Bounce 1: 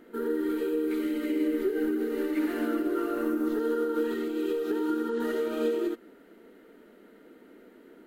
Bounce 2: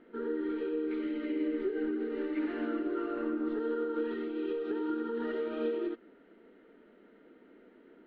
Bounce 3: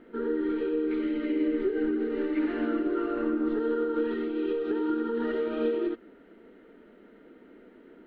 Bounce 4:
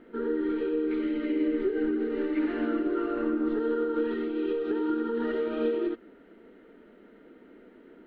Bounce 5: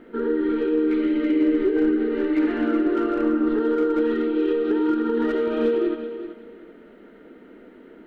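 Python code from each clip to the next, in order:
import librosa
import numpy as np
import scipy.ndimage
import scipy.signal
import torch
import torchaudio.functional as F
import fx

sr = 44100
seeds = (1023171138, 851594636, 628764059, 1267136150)

y1 = scipy.signal.sosfilt(scipy.signal.cheby2(4, 70, 12000.0, 'lowpass', fs=sr, output='sos'), x)
y1 = F.gain(torch.from_numpy(y1), -5.0).numpy()
y2 = fx.low_shelf(y1, sr, hz=120.0, db=7.5)
y2 = F.gain(torch.from_numpy(y2), 4.5).numpy()
y3 = y2
y4 = fx.echo_feedback(y3, sr, ms=380, feedback_pct=22, wet_db=-11.0)
y4 = fx.slew_limit(y4, sr, full_power_hz=41.0)
y4 = F.gain(torch.from_numpy(y4), 6.0).numpy()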